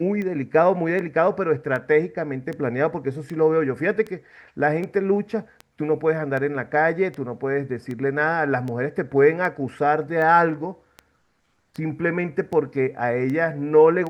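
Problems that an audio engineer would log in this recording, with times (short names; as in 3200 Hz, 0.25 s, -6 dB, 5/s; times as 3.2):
tick 78 rpm -20 dBFS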